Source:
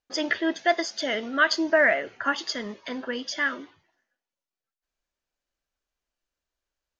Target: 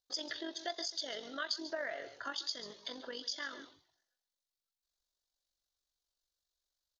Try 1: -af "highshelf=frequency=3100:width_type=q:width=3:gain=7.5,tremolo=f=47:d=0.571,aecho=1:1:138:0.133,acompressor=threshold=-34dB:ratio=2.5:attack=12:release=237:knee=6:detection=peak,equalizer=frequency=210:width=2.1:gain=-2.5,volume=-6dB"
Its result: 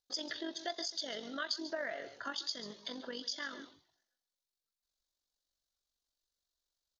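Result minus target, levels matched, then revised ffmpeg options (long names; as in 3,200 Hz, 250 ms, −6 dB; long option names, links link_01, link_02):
250 Hz band +2.5 dB
-af "highshelf=frequency=3100:width_type=q:width=3:gain=7.5,tremolo=f=47:d=0.571,aecho=1:1:138:0.133,acompressor=threshold=-34dB:ratio=2.5:attack=12:release=237:knee=6:detection=peak,equalizer=frequency=210:width=2.1:gain=-10.5,volume=-6dB"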